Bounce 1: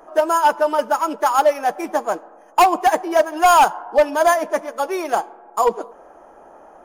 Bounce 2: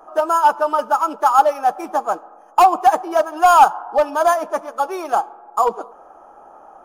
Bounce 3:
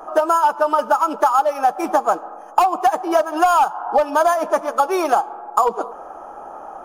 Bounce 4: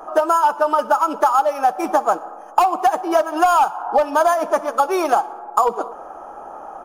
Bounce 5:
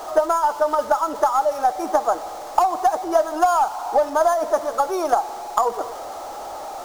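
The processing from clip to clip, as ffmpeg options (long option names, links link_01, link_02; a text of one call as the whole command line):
ffmpeg -i in.wav -af "equalizer=frequency=800:width_type=o:width=0.33:gain=8,equalizer=frequency=1250:width_type=o:width=0.33:gain=10,equalizer=frequency=2000:width_type=o:width=0.33:gain=-7,volume=-3.5dB" out.wav
ffmpeg -i in.wav -af "acompressor=threshold=-21dB:ratio=10,volume=8.5dB" out.wav
ffmpeg -i in.wav -af "aecho=1:1:61|122|183|244:0.0794|0.0461|0.0267|0.0155" out.wav
ffmpeg -i in.wav -af "aeval=exprs='val(0)+0.5*0.0501*sgn(val(0))':channel_layout=same,aeval=exprs='0.891*(cos(1*acos(clip(val(0)/0.891,-1,1)))-cos(1*PI/2))+0.0447*(cos(2*acos(clip(val(0)/0.891,-1,1)))-cos(2*PI/2))+0.126*(cos(3*acos(clip(val(0)/0.891,-1,1)))-cos(3*PI/2))':channel_layout=same,equalizer=frequency=160:width_type=o:width=0.67:gain=-11,equalizer=frequency=630:width_type=o:width=0.67:gain=4,equalizer=frequency=2500:width_type=o:width=0.67:gain=-9,equalizer=frequency=6300:width_type=o:width=0.67:gain=4,volume=-1.5dB" out.wav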